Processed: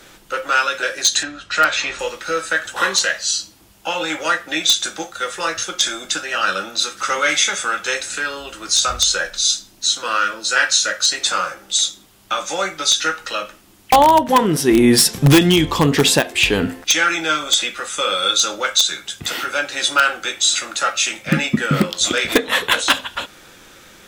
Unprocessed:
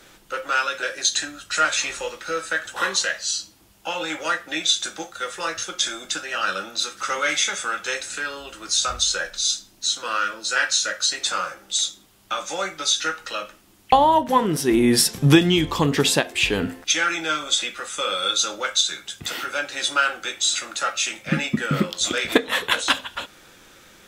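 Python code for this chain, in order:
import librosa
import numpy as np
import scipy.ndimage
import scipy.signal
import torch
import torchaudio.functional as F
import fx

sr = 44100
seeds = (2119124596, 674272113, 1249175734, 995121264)

p1 = fx.lowpass(x, sr, hz=4300.0, slope=12, at=(1.23, 1.99))
p2 = (np.mod(10.0 ** (8.5 / 20.0) * p1 + 1.0, 2.0) - 1.0) / 10.0 ** (8.5 / 20.0)
p3 = p1 + (p2 * librosa.db_to_amplitude(-5.5))
y = p3 * librosa.db_to_amplitude(1.5)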